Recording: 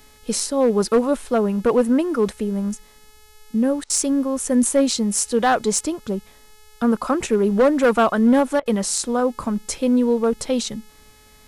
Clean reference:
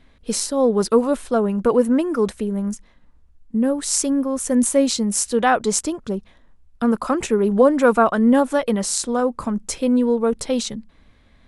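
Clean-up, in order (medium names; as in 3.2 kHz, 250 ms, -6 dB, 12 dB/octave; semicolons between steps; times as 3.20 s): clip repair -10 dBFS; de-hum 427.1 Hz, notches 31; interpolate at 3.84/8.60 s, 57 ms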